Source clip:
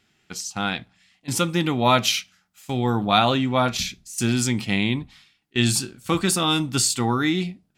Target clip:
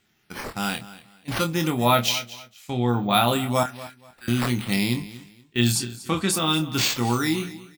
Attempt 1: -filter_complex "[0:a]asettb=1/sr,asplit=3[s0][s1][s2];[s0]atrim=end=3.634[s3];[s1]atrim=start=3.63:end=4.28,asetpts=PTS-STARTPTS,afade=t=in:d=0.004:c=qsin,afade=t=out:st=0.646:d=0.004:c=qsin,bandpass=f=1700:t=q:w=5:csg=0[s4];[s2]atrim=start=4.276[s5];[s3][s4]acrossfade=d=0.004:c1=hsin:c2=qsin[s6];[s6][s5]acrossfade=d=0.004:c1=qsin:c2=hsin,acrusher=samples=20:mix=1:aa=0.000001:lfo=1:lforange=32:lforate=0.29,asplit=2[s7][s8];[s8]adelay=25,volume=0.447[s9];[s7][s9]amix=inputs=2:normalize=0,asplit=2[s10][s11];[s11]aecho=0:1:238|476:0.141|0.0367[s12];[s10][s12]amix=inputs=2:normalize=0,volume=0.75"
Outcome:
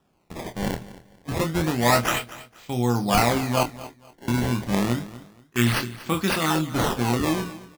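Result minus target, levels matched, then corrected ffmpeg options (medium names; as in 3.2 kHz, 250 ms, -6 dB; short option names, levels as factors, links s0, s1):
decimation with a swept rate: distortion +9 dB
-filter_complex "[0:a]asettb=1/sr,asplit=3[s0][s1][s2];[s0]atrim=end=3.634[s3];[s1]atrim=start=3.63:end=4.28,asetpts=PTS-STARTPTS,afade=t=in:d=0.004:c=qsin,afade=t=out:st=0.646:d=0.004:c=qsin,bandpass=f=1700:t=q:w=5:csg=0[s4];[s2]atrim=start=4.276[s5];[s3][s4]acrossfade=d=0.004:c1=hsin:c2=qsin[s6];[s6][s5]acrossfade=d=0.004:c1=qsin:c2=hsin,acrusher=samples=4:mix=1:aa=0.000001:lfo=1:lforange=6.4:lforate=0.29,asplit=2[s7][s8];[s8]adelay=25,volume=0.447[s9];[s7][s9]amix=inputs=2:normalize=0,asplit=2[s10][s11];[s11]aecho=0:1:238|476:0.141|0.0367[s12];[s10][s12]amix=inputs=2:normalize=0,volume=0.75"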